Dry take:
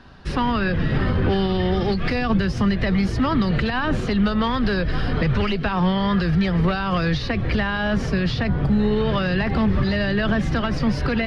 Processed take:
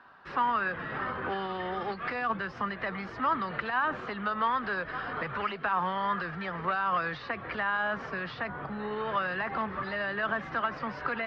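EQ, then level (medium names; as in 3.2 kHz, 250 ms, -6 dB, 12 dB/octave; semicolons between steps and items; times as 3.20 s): band-pass filter 1.2 kHz, Q 1.7; distance through air 62 m; 0.0 dB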